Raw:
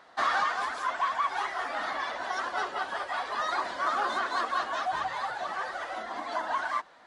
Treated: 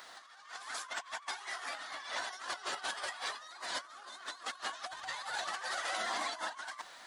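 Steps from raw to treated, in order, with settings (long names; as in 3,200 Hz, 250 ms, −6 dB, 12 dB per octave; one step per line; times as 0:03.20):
first-order pre-emphasis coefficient 0.9
hum removal 240.8 Hz, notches 3
compressor whose output falls as the input rises −51 dBFS, ratio −0.5
level +10 dB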